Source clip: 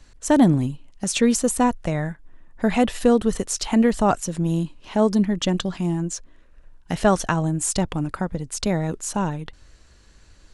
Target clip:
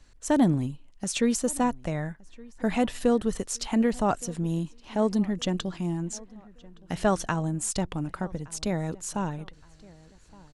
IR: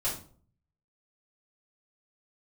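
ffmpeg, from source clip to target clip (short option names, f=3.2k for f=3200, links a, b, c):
-filter_complex "[0:a]asplit=2[a][b];[b]adelay=1168,lowpass=f=3.2k:p=1,volume=-23dB,asplit=2[c][d];[d]adelay=1168,lowpass=f=3.2k:p=1,volume=0.4,asplit=2[e][f];[f]adelay=1168,lowpass=f=3.2k:p=1,volume=0.4[g];[a][c][e][g]amix=inputs=4:normalize=0,volume=-6dB"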